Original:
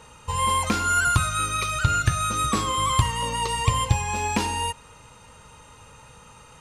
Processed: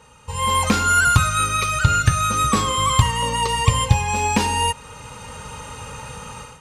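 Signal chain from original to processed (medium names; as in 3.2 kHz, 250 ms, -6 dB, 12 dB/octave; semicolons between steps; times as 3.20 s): level rider gain up to 15.5 dB; comb of notches 340 Hz; trim -1 dB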